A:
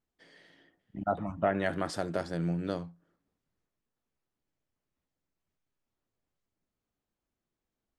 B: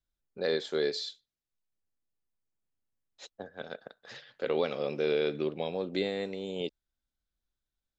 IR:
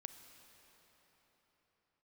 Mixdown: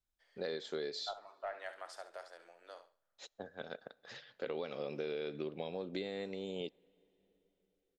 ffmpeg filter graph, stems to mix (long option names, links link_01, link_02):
-filter_complex "[0:a]highpass=frequency=590:width=0.5412,highpass=frequency=590:width=1.3066,aeval=exprs='0.126*(cos(1*acos(clip(val(0)/0.126,-1,1)))-cos(1*PI/2))+0.00158*(cos(4*acos(clip(val(0)/0.126,-1,1)))-cos(4*PI/2))':channel_layout=same,volume=-12.5dB,asplit=3[link_01][link_02][link_03];[link_02]volume=-23.5dB[link_04];[link_03]volume=-10.5dB[link_05];[1:a]acompressor=threshold=-32dB:ratio=6,volume=-4.5dB,asplit=2[link_06][link_07];[link_07]volume=-14.5dB[link_08];[2:a]atrim=start_sample=2205[link_09];[link_04][link_08]amix=inputs=2:normalize=0[link_10];[link_10][link_09]afir=irnorm=-1:irlink=0[link_11];[link_05]aecho=0:1:68|136|204|272:1|0.27|0.0729|0.0197[link_12];[link_01][link_06][link_11][link_12]amix=inputs=4:normalize=0"